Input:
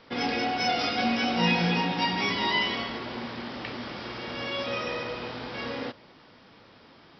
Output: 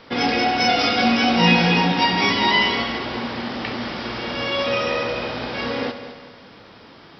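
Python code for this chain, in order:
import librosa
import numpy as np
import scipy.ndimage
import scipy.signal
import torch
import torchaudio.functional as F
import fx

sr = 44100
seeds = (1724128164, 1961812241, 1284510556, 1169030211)

y = fx.echo_heads(x, sr, ms=68, heads='first and third', feedback_pct=55, wet_db=-14.0)
y = y * 10.0 ** (8.0 / 20.0)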